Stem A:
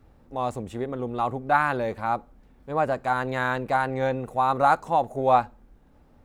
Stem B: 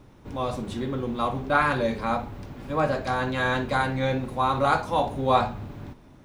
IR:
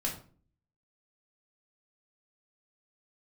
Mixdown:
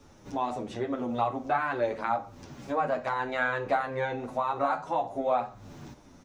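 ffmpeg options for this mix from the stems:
-filter_complex "[0:a]lowpass=3000,aemphasis=mode=production:type=bsi,acompressor=threshold=-25dB:ratio=6,volume=0dB,asplit=3[link_01][link_02][link_03];[link_02]volume=-5dB[link_04];[1:a]equalizer=frequency=6100:width_type=o:width=0.85:gain=13.5,acrossover=split=110|5000[link_05][link_06][link_07];[link_05]acompressor=threshold=-55dB:ratio=4[link_08];[link_06]acompressor=threshold=-35dB:ratio=4[link_09];[link_07]acompressor=threshold=-55dB:ratio=4[link_10];[link_08][link_09][link_10]amix=inputs=3:normalize=0,volume=-0.5dB[link_11];[link_03]apad=whole_len=275567[link_12];[link_11][link_12]sidechaincompress=threshold=-37dB:ratio=8:attack=11:release=332[link_13];[2:a]atrim=start_sample=2205[link_14];[link_04][link_14]afir=irnorm=-1:irlink=0[link_15];[link_01][link_13][link_15]amix=inputs=3:normalize=0,asplit=2[link_16][link_17];[link_17]adelay=8.7,afreqshift=-2.1[link_18];[link_16][link_18]amix=inputs=2:normalize=1"

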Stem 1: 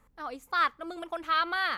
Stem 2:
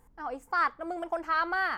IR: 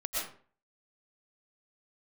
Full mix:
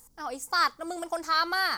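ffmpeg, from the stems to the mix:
-filter_complex "[0:a]highpass=42,volume=-7dB[link_01];[1:a]highshelf=frequency=3500:width_type=q:width=1.5:gain=13.5,volume=-2.5dB[link_02];[link_01][link_02]amix=inputs=2:normalize=0,highshelf=frequency=3300:gain=8"

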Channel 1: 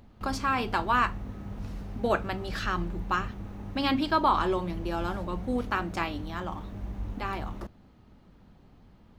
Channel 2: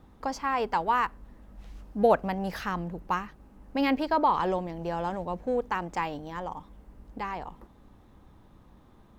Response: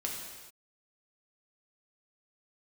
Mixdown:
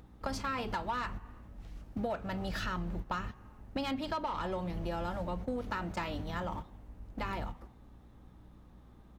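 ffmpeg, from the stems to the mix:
-filter_complex "[0:a]asoftclip=type=tanh:threshold=-20.5dB,volume=1dB[link_01];[1:a]aeval=exprs='val(0)+0.00224*(sin(2*PI*60*n/s)+sin(2*PI*2*60*n/s)/2+sin(2*PI*3*60*n/s)/3+sin(2*PI*4*60*n/s)/4+sin(2*PI*5*60*n/s)/5)':channel_layout=same,bandreject=frequency=1000:width=20,adelay=6.2,volume=-4.5dB,asplit=3[link_02][link_03][link_04];[link_03]volume=-19dB[link_05];[link_04]apad=whole_len=405210[link_06];[link_01][link_06]sidechaingate=range=-20dB:threshold=-43dB:ratio=16:detection=peak[link_07];[2:a]atrim=start_sample=2205[link_08];[link_05][link_08]afir=irnorm=-1:irlink=0[link_09];[link_07][link_02][link_09]amix=inputs=3:normalize=0,acompressor=threshold=-33dB:ratio=6"

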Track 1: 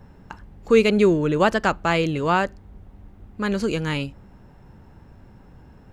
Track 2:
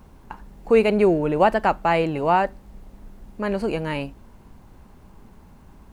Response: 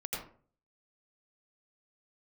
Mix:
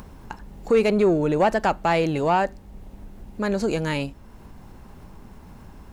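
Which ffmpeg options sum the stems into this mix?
-filter_complex "[0:a]highshelf=frequency=2100:gain=11.5,volume=-7.5dB[link_01];[1:a]acompressor=mode=upward:threshold=-34dB:ratio=2.5,volume=-1.5dB,asplit=2[link_02][link_03];[link_03]apad=whole_len=261493[link_04];[link_01][link_04]sidechaincompress=threshold=-23dB:ratio=8:attack=6.6:release=185[link_05];[link_05][link_02]amix=inputs=2:normalize=0,asoftclip=type=tanh:threshold=-10dB"

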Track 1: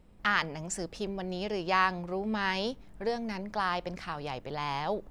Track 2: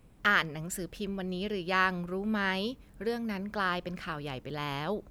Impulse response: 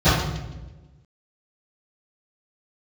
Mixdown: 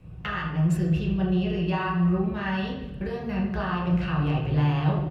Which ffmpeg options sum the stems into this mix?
-filter_complex "[0:a]volume=-18.5dB,asplit=2[link_01][link_02];[link_02]volume=-18.5dB[link_03];[1:a]equalizer=frequency=2700:width_type=o:width=0.23:gain=10,acompressor=threshold=-34dB:ratio=6,adelay=0.8,volume=1.5dB,asplit=2[link_04][link_05];[link_05]volume=-18.5dB[link_06];[2:a]atrim=start_sample=2205[link_07];[link_03][link_06]amix=inputs=2:normalize=0[link_08];[link_08][link_07]afir=irnorm=-1:irlink=0[link_09];[link_01][link_04][link_09]amix=inputs=3:normalize=0,lowpass=frequency=3600:poles=1"

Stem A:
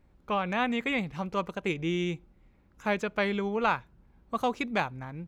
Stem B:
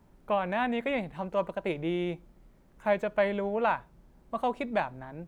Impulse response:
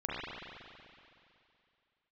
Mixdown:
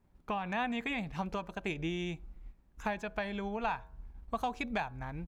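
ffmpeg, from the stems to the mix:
-filter_complex "[0:a]agate=range=-15dB:threshold=-59dB:ratio=16:detection=peak,asubboost=boost=10:cutoff=51,volume=0.5dB[link_01];[1:a]bandreject=frequency=92.46:width_type=h:width=4,bandreject=frequency=184.92:width_type=h:width=4,bandreject=frequency=277.38:width_type=h:width=4,bandreject=frequency=369.84:width_type=h:width=4,bandreject=frequency=462.3:width_type=h:width=4,bandreject=frequency=554.76:width_type=h:width=4,bandreject=frequency=647.22:width_type=h:width=4,bandreject=frequency=739.68:width_type=h:width=4,bandreject=frequency=832.14:width_type=h:width=4,bandreject=frequency=924.6:width_type=h:width=4,bandreject=frequency=1017.06:width_type=h:width=4,bandreject=frequency=1109.52:width_type=h:width=4,bandreject=frequency=1201.98:width_type=h:width=4,bandreject=frequency=1294.44:width_type=h:width=4,bandreject=frequency=1386.9:width_type=h:width=4,bandreject=frequency=1479.36:width_type=h:width=4,bandreject=frequency=1571.82:width_type=h:width=4,bandreject=frequency=1664.28:width_type=h:width=4,bandreject=frequency=1756.74:width_type=h:width=4,adelay=1.1,volume=-12dB,asplit=2[link_02][link_03];[link_03]apad=whole_len=232497[link_04];[link_01][link_04]sidechaincompress=threshold=-44dB:ratio=8:attack=16:release=370[link_05];[link_05][link_02]amix=inputs=2:normalize=0"

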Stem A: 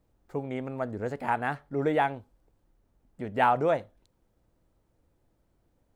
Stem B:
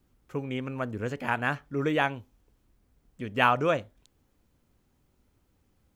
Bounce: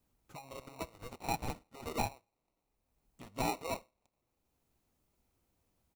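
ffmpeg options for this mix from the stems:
ffmpeg -i stem1.wav -i stem2.wav -filter_complex "[0:a]highpass=1200,aecho=1:1:6:0.35,acrusher=samples=27:mix=1:aa=0.000001,volume=-1.5dB,asplit=2[link_01][link_02];[1:a]highshelf=frequency=3900:gain=10,acompressor=threshold=-32dB:ratio=6,volume=-11.5dB[link_03];[link_02]apad=whole_len=262405[link_04];[link_03][link_04]sidechaincompress=threshold=-52dB:ratio=8:attack=16:release=590[link_05];[link_01][link_05]amix=inputs=2:normalize=0,alimiter=limit=-23dB:level=0:latency=1:release=483" out.wav

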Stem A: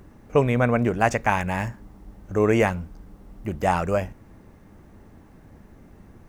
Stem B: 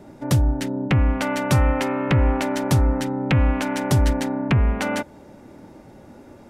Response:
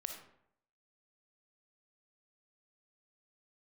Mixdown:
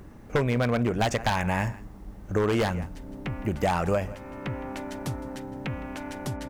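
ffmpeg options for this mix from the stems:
-filter_complex "[0:a]volume=2dB,asplit=3[link_01][link_02][link_03];[link_02]volume=-22.5dB[link_04];[1:a]highpass=120,adelay=2350,volume=-12dB,asplit=2[link_05][link_06];[link_06]volume=-19dB[link_07];[link_03]apad=whole_len=390069[link_08];[link_05][link_08]sidechaincompress=threshold=-35dB:ratio=5:attack=38:release=390[link_09];[link_04][link_07]amix=inputs=2:normalize=0,aecho=0:1:162:1[link_10];[link_01][link_09][link_10]amix=inputs=3:normalize=0,aeval=exprs='0.251*(abs(mod(val(0)/0.251+3,4)-2)-1)':channel_layout=same,acompressor=threshold=-21dB:ratio=6"

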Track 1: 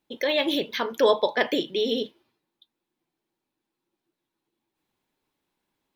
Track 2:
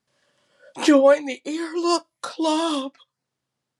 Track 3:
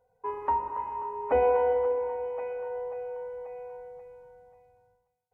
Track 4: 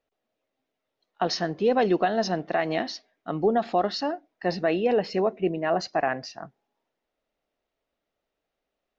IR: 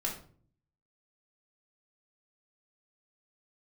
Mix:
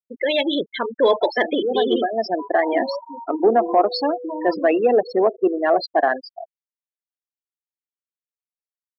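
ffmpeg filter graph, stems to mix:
-filter_complex "[0:a]acontrast=48,volume=-8.5dB,asplit=2[link_01][link_02];[1:a]acompressor=threshold=-20dB:ratio=6,adelay=1850,volume=-13.5dB,asplit=2[link_03][link_04];[link_04]volume=-12dB[link_05];[2:a]acompressor=threshold=-35dB:ratio=2,adelay=2150,volume=-7dB,asplit=2[link_06][link_07];[link_07]volume=-11.5dB[link_08];[3:a]highpass=frequency=260:width=0.5412,highpass=frequency=260:width=1.3066,volume=-0.5dB,asplit=2[link_09][link_10];[link_10]volume=-18dB[link_11];[link_02]apad=whole_len=396340[link_12];[link_09][link_12]sidechaincompress=threshold=-33dB:ratio=5:attack=16:release=680[link_13];[4:a]atrim=start_sample=2205[link_14];[link_05][link_08][link_11]amix=inputs=3:normalize=0[link_15];[link_15][link_14]afir=irnorm=-1:irlink=0[link_16];[link_01][link_03][link_06][link_13][link_16]amix=inputs=5:normalize=0,afftfilt=real='re*gte(hypot(re,im),0.0708)':imag='im*gte(hypot(re,im),0.0708)':win_size=1024:overlap=0.75,acontrast=83"

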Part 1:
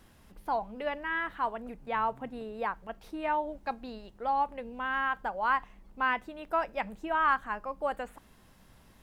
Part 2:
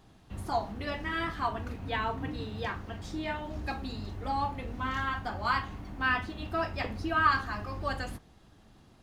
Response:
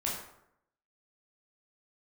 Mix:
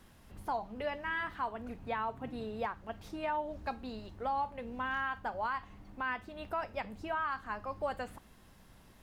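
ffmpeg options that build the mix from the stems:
-filter_complex "[0:a]volume=-1dB[link_01];[1:a]volume=-12dB[link_02];[link_01][link_02]amix=inputs=2:normalize=0,alimiter=level_in=2dB:limit=-24dB:level=0:latency=1:release=308,volume=-2dB"

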